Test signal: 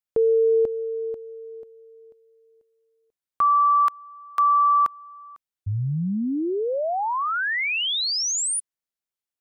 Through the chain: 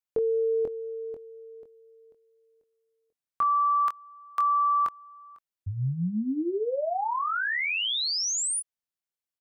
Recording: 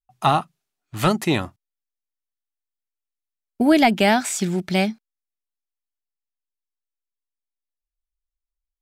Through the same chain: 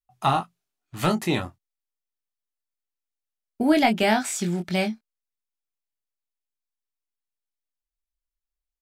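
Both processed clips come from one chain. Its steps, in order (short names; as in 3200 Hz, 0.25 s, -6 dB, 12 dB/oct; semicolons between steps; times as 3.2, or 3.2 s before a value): doubler 23 ms -6 dB; gain -4.5 dB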